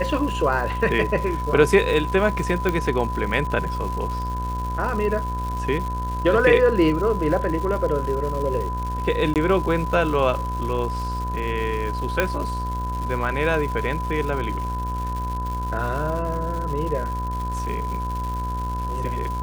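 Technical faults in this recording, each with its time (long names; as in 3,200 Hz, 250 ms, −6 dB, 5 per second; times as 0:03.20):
mains buzz 60 Hz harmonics 30 −28 dBFS
surface crackle 280 per second −30 dBFS
whistle 1,000 Hz −28 dBFS
0:02.69: click −10 dBFS
0:09.34–0:09.36: drop-out 18 ms
0:12.20: click −6 dBFS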